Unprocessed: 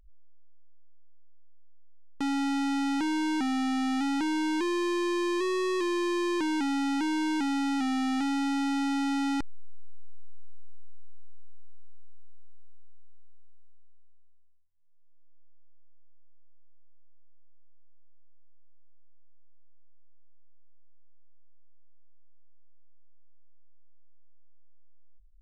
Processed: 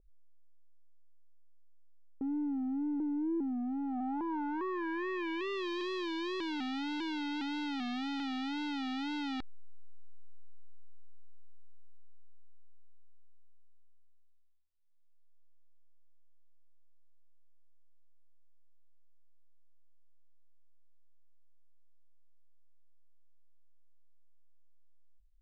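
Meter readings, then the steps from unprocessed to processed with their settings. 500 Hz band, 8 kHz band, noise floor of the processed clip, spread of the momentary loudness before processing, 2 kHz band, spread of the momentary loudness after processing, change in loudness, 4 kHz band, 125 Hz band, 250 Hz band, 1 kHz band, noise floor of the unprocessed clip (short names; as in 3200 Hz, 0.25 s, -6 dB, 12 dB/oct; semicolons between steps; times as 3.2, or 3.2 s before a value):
-8.0 dB, under -15 dB, -57 dBFS, 0 LU, -7.0 dB, 2 LU, -7.5 dB, -5.5 dB, n/a, -7.5 dB, -8.0 dB, -48 dBFS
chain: wow and flutter 120 cents; low-pass sweep 440 Hz -> 3800 Hz, 3.56–5.71; gain -9 dB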